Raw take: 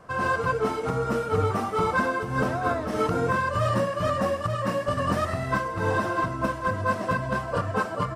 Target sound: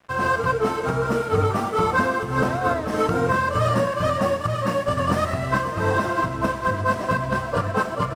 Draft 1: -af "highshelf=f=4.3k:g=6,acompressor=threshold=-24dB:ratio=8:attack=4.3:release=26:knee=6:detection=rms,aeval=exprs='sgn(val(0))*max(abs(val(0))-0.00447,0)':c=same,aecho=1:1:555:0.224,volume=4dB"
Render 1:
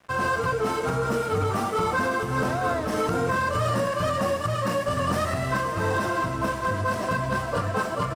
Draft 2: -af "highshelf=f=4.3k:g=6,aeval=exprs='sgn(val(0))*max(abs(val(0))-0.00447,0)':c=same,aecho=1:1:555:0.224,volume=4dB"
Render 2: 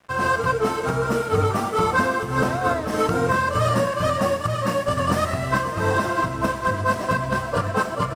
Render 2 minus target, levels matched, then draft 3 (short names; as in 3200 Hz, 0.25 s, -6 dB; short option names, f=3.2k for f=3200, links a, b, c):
8000 Hz band +4.0 dB
-af "aeval=exprs='sgn(val(0))*max(abs(val(0))-0.00447,0)':c=same,aecho=1:1:555:0.224,volume=4dB"